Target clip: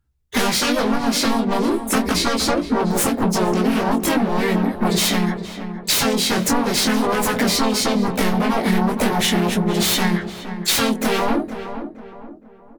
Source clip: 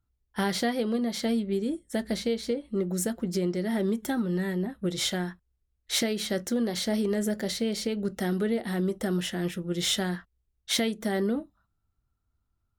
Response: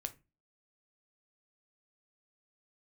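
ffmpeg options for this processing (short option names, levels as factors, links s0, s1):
-filter_complex "[0:a]agate=range=0.1:threshold=0.00141:ratio=16:detection=peak,aeval=exprs='0.224*sin(PI/2*5.01*val(0)/0.224)':c=same,flanger=delay=16.5:depth=6.4:speed=0.41,asplit=3[s0][s1][s2];[s1]asetrate=52444,aresample=44100,atempo=0.840896,volume=0.794[s3];[s2]asetrate=88200,aresample=44100,atempo=0.5,volume=0.2[s4];[s0][s3][s4]amix=inputs=3:normalize=0,acompressor=threshold=0.0562:ratio=6,asplit=2[s5][s6];[s6]adelay=467,lowpass=f=1600:p=1,volume=0.335,asplit=2[s7][s8];[s8]adelay=467,lowpass=f=1600:p=1,volume=0.41,asplit=2[s9][s10];[s10]adelay=467,lowpass=f=1600:p=1,volume=0.41,asplit=2[s11][s12];[s12]adelay=467,lowpass=f=1600:p=1,volume=0.41[s13];[s7][s9][s11][s13]amix=inputs=4:normalize=0[s14];[s5][s14]amix=inputs=2:normalize=0,volume=2.66"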